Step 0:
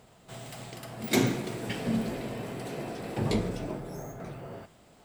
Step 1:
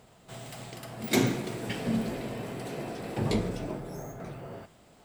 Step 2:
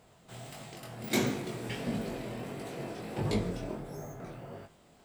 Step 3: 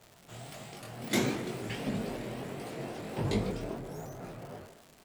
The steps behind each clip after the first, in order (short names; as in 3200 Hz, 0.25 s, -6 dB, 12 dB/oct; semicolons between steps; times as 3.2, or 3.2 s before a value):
nothing audible
chorus 1.5 Hz, delay 19.5 ms, depth 5.3 ms
speakerphone echo 0.15 s, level -9 dB; crackle 240/s -43 dBFS; shaped vibrato saw up 3.7 Hz, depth 160 cents